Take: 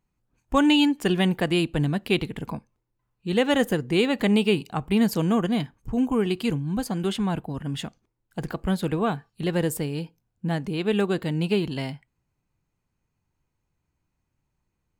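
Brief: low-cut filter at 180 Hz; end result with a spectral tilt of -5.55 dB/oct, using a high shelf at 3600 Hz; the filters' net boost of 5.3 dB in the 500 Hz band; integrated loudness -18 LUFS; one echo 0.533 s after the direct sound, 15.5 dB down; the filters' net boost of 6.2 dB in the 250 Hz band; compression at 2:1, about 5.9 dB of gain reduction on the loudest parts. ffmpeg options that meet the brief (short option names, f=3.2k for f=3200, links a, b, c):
-af "highpass=180,equalizer=f=250:t=o:g=8.5,equalizer=f=500:t=o:g=3.5,highshelf=f=3.6k:g=9,acompressor=threshold=-20dB:ratio=2,aecho=1:1:533:0.168,volume=5.5dB"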